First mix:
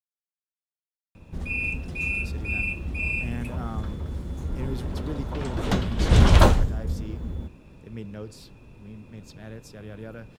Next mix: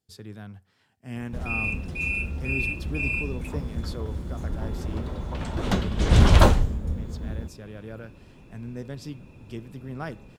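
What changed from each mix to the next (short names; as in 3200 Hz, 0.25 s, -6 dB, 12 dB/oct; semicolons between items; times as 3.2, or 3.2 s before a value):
speech: entry -2.15 s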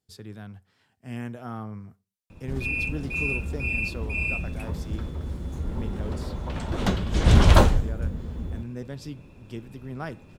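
background: entry +1.15 s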